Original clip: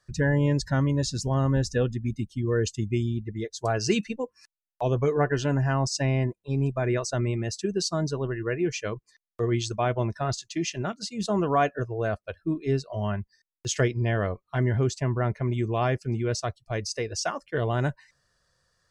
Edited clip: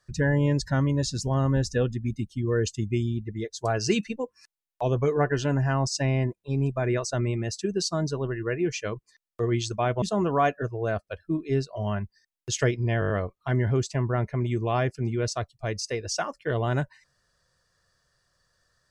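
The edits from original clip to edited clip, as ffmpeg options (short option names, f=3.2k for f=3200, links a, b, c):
-filter_complex "[0:a]asplit=7[a][b][c][d][e][f][g];[a]atrim=end=10.022[h];[b]atrim=start=11.188:end=14.192[i];[c]atrim=start=14.168:end=14.192[j];[d]atrim=start=14.168:end=14.192[k];[e]atrim=start=14.168:end=14.192[l];[f]atrim=start=14.168:end=14.192[m];[g]atrim=start=14.168[n];[h][i]acrossfade=d=0.004:c1=hsin:c2=hsin[o];[o][j]acrossfade=d=0.004:c1=hsin:c2=hsin[p];[p][k]acrossfade=d=0.004:c1=hsin:c2=hsin[q];[q][l]acrossfade=d=0.004:c1=hsin:c2=hsin[r];[r][m]acrossfade=d=0.004:c1=hsin:c2=hsin[s];[s][n]acrossfade=d=0.004:c1=hsin:c2=hsin"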